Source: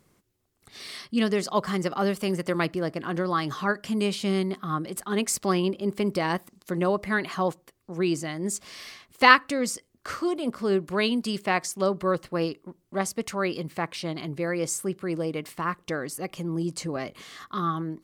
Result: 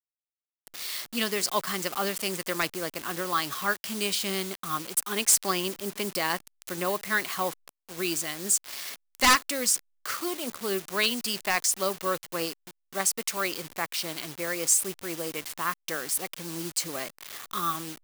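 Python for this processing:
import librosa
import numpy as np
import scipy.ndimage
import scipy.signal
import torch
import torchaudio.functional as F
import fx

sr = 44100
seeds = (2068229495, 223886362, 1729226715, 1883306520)

y = fx.delta_hold(x, sr, step_db=-37.0)
y = fx.tilt_eq(y, sr, slope=3.5)
y = 10.0 ** (-11.0 / 20.0) * (np.abs((y / 10.0 ** (-11.0 / 20.0) + 3.0) % 4.0 - 2.0) - 1.0)
y = y * 10.0 ** (-1.5 / 20.0)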